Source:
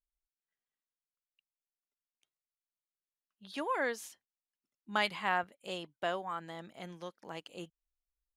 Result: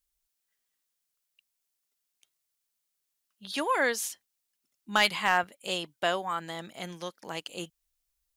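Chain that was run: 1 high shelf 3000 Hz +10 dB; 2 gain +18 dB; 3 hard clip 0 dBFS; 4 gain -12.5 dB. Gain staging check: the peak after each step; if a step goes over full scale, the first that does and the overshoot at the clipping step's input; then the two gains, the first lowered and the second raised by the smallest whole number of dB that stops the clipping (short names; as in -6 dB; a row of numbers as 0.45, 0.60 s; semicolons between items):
-13.0, +5.0, 0.0, -12.5 dBFS; step 2, 5.0 dB; step 2 +13 dB, step 4 -7.5 dB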